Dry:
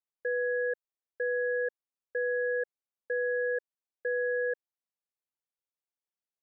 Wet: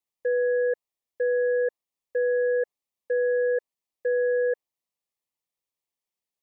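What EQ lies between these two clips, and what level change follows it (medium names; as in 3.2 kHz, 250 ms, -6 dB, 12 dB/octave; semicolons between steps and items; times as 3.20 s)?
dynamic bell 850 Hz, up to +5 dB, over -42 dBFS, Q 0.72; Butterworth band-stop 1.5 kHz, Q 3.1; +4.5 dB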